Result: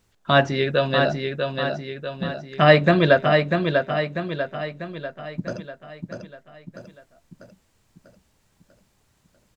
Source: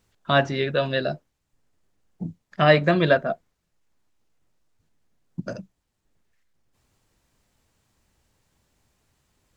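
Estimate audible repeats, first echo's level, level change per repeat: 6, -5.0 dB, -6.0 dB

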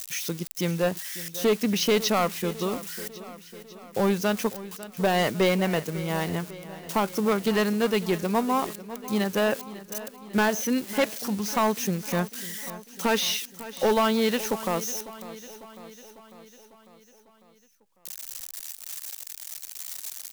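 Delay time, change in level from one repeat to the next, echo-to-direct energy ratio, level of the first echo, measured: 0.549 s, -4.5 dB, -14.0 dB, -16.0 dB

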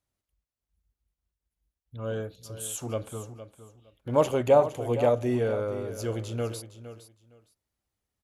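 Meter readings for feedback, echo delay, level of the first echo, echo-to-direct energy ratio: 19%, 0.462 s, -13.0 dB, -13.0 dB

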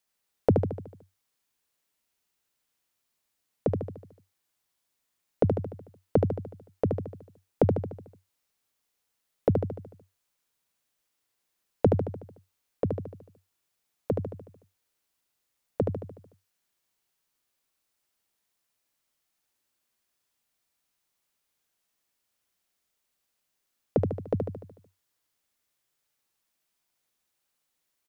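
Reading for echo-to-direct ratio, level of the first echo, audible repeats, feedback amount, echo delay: -3.0 dB, -4.5 dB, 6, 53%, 74 ms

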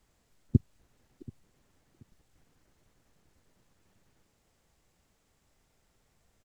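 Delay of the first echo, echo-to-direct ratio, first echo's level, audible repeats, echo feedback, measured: 0.731 s, -21.5 dB, -22.0 dB, 2, 29%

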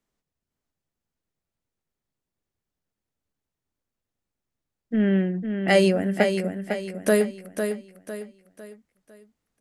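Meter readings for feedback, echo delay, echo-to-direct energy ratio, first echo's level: 39%, 0.503 s, -6.5 dB, -7.0 dB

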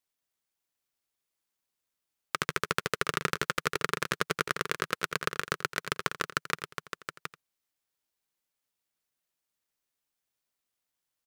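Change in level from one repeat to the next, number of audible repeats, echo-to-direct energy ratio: no steady repeat, 3, -7.0 dB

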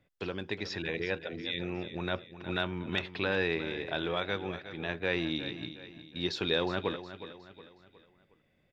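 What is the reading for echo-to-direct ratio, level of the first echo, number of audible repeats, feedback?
-11.5 dB, -12.5 dB, 3, 42%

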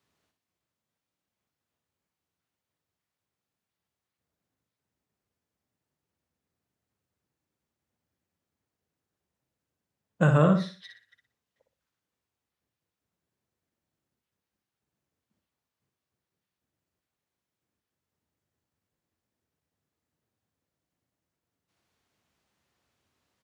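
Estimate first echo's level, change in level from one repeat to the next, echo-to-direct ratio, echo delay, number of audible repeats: -7.0 dB, -10.5 dB, -6.5 dB, 60 ms, 3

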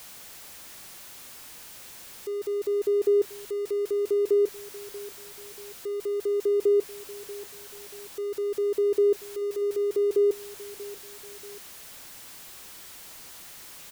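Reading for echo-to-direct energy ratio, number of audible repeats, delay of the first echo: -17.0 dB, 2, 0.635 s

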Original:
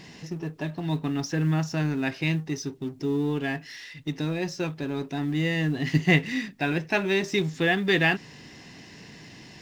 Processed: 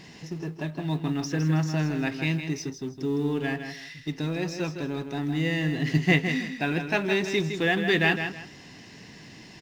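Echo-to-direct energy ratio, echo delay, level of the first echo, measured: -7.5 dB, 0.16 s, -8.0 dB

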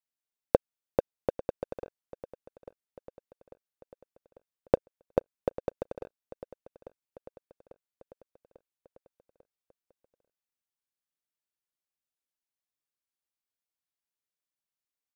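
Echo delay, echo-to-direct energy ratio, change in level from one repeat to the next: 0.845 s, -15.5 dB, -5.0 dB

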